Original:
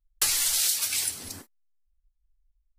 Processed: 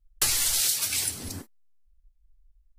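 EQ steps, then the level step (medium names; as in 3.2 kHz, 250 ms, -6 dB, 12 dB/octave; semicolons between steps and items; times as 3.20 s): bass shelf 410 Hz +9.5 dB; 0.0 dB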